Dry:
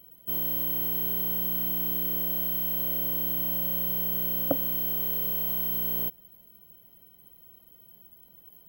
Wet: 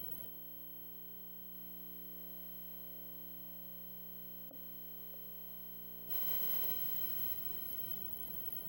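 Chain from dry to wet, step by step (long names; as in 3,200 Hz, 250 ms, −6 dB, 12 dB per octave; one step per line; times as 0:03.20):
feedback echo with a high-pass in the loop 629 ms, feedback 54%, high-pass 930 Hz, level −12 dB
compressor whose output falls as the input rises −43 dBFS, ratio −1
level −2 dB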